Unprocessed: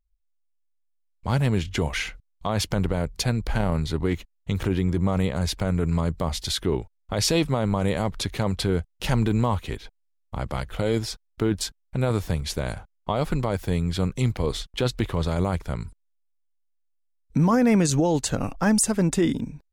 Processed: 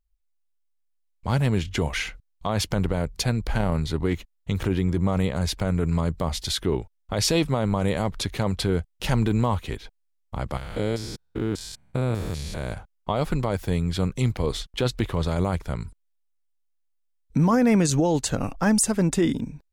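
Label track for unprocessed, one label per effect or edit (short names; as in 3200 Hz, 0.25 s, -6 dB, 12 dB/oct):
10.570000	12.730000	stepped spectrum every 0.2 s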